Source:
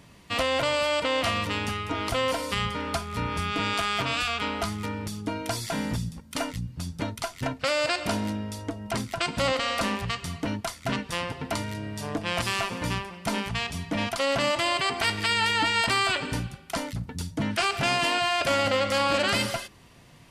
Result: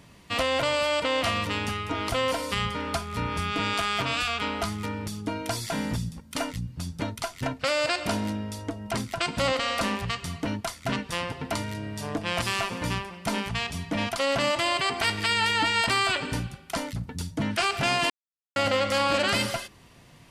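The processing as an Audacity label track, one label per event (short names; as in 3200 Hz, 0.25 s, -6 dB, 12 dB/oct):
18.100000	18.560000	mute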